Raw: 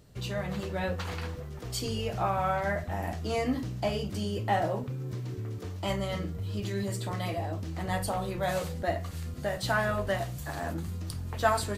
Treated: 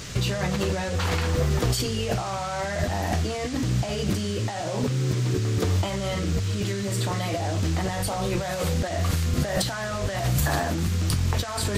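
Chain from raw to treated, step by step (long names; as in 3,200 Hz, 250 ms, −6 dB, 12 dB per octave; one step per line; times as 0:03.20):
in parallel at −1 dB: brickwall limiter −23 dBFS, peak gain reduction 11.5 dB
on the sum: compressor whose output falls as the input rises −33 dBFS, ratio −1
noise in a band 1,100–7,600 Hz −48 dBFS
level +7 dB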